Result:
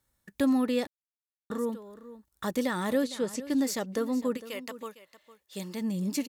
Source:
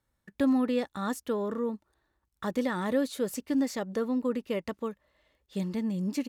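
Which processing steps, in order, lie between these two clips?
3.04–3.5 air absorption 76 m; 4.36–5.8 HPF 1400 Hz -> 350 Hz 6 dB/oct; high shelf 4900 Hz +11.5 dB; echo 0.456 s -16 dB; 0.87–1.5 mute

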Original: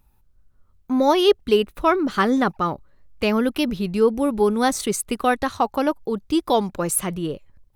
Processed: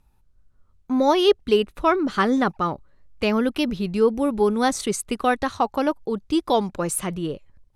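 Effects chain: LPF 10000 Hz 12 dB/oct; gain -1 dB

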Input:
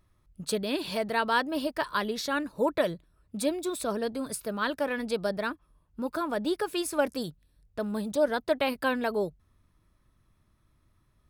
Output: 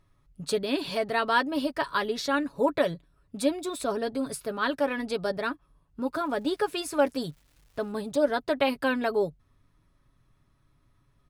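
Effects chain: high shelf 11000 Hz -10 dB; comb 7.2 ms, depth 48%; 6.16–7.91 crackle 500/s -54 dBFS; gain +1 dB

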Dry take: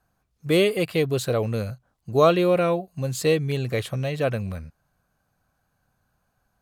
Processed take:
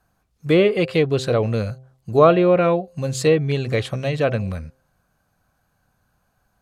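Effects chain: de-hum 130.6 Hz, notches 6; treble ducked by the level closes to 2300 Hz, closed at -15.5 dBFS; gain +4.5 dB

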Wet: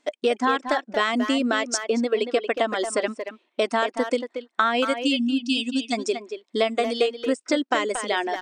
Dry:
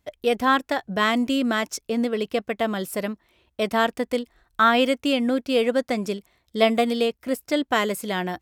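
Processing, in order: reverb removal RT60 2 s; spectral gain 4.95–5.93, 290–2500 Hz -28 dB; compressor 6:1, threshold -27 dBFS, peak gain reduction 13.5 dB; brick-wall FIR band-pass 220–9400 Hz; speakerphone echo 0.23 s, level -7 dB; gain +8 dB

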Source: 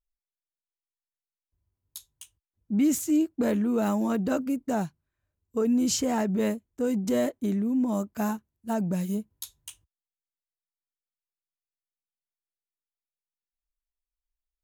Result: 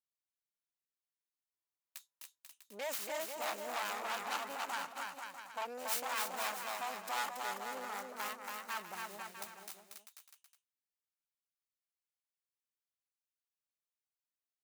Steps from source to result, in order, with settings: self-modulated delay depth 1 ms; HPF 890 Hz 12 dB/oct; notch 3400 Hz, Q 25; on a send: bouncing-ball echo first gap 0.28 s, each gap 0.75×, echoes 5; on the sum: core saturation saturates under 3600 Hz; gain -6 dB

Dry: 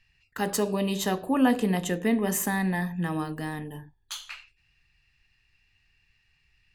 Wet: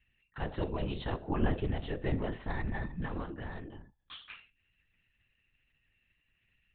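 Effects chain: LPC vocoder at 8 kHz whisper; gain -7.5 dB

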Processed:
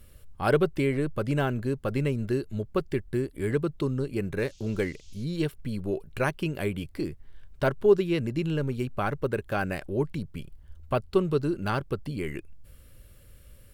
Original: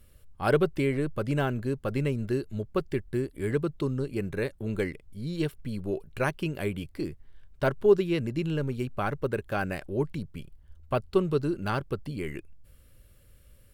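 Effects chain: in parallel at -3 dB: compressor, threshold -41 dBFS, peak gain reduction 24 dB; 4.38–5.23 on the sum: band noise 2700–7000 Hz -59 dBFS

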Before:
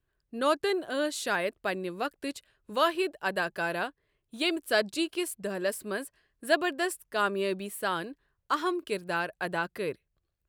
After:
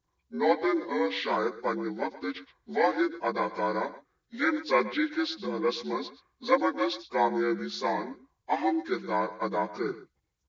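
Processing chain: inharmonic rescaling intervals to 76%; echo 0.123 s -16 dB; gain +3 dB

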